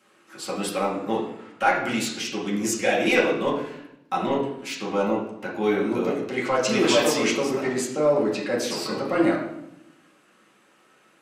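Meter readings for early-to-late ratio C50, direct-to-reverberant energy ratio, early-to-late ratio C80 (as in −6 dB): 4.5 dB, −7.0 dB, 7.5 dB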